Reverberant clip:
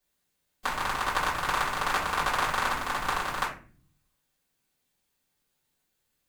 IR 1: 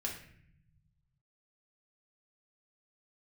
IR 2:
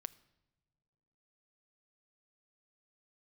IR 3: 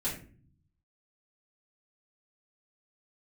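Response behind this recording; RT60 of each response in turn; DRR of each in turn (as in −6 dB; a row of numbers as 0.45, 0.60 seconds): 3; 0.60 s, non-exponential decay, 0.45 s; −2.0, 17.0, −9.5 decibels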